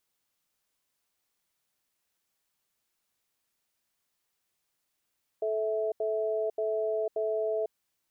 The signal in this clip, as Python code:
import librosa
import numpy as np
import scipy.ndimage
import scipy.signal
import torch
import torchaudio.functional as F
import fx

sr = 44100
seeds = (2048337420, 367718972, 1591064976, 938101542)

y = fx.cadence(sr, length_s=2.29, low_hz=435.0, high_hz=654.0, on_s=0.5, off_s=0.08, level_db=-29.5)